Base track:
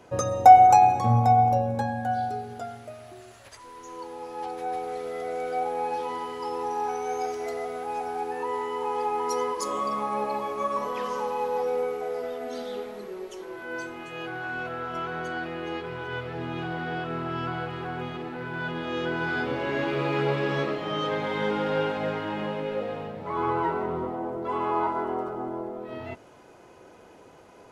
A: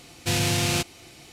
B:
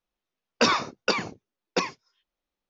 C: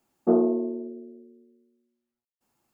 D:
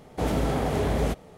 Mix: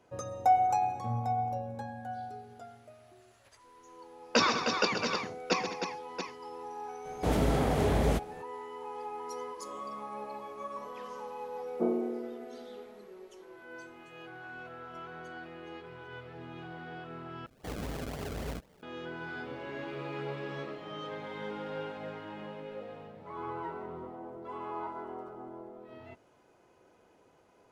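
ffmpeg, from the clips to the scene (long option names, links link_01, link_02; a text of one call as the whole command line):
ffmpeg -i bed.wav -i cue0.wav -i cue1.wav -i cue2.wav -i cue3.wav -filter_complex "[4:a]asplit=2[link_01][link_02];[0:a]volume=-12.5dB[link_03];[2:a]aecho=1:1:130|201|310|679:0.376|0.188|0.473|0.376[link_04];[link_02]acrusher=samples=33:mix=1:aa=0.000001:lfo=1:lforange=33:lforate=3.8[link_05];[link_03]asplit=2[link_06][link_07];[link_06]atrim=end=17.464[link_08];[link_05]atrim=end=1.37,asetpts=PTS-STARTPTS,volume=-13dB[link_09];[link_07]atrim=start=18.826[link_10];[link_04]atrim=end=2.69,asetpts=PTS-STARTPTS,volume=-4.5dB,afade=type=in:duration=0.004:curve=hsin,afade=type=out:start_time=2.686:duration=0.004:curve=hsin,adelay=3740[link_11];[link_01]atrim=end=1.37,asetpts=PTS-STARTPTS,volume=-2dB,afade=type=in:duration=0.004:curve=hsin,afade=type=out:start_time=1.366:duration=0.004:curve=hsin,adelay=7050[link_12];[3:a]atrim=end=2.73,asetpts=PTS-STARTPTS,volume=-9.5dB,afade=type=in:duration=0.004:curve=hsin,afade=type=out:start_time=2.726:duration=0.004:curve=hsin,adelay=11530[link_13];[link_08][link_09]acrossfade=duration=0.004:curve1=hsin:curve2=hsin[link_14];[link_14][link_10]acrossfade=duration=0.004:curve1=hsin:curve2=hsin[link_15];[link_15][link_11][link_12][link_13]amix=inputs=4:normalize=0" out.wav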